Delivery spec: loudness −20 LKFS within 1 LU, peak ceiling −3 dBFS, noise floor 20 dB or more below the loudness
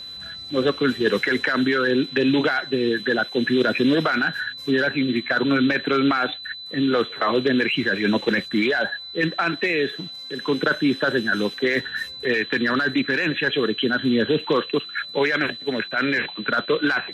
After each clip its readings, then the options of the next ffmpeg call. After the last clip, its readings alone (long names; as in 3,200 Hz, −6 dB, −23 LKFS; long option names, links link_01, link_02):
interfering tone 4,000 Hz; level of the tone −34 dBFS; integrated loudness −22.0 LKFS; sample peak −7.5 dBFS; target loudness −20.0 LKFS
→ -af "bandreject=frequency=4000:width=30"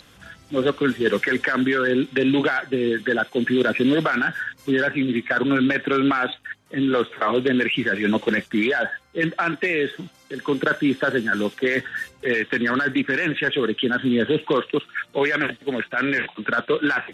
interfering tone none found; integrated loudness −22.0 LKFS; sample peak −7.5 dBFS; target loudness −20.0 LKFS
→ -af "volume=2dB"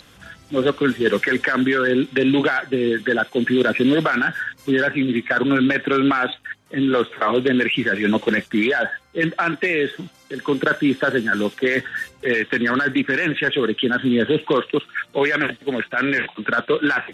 integrated loudness −20.0 LKFS; sample peak −5.5 dBFS; background noise floor −51 dBFS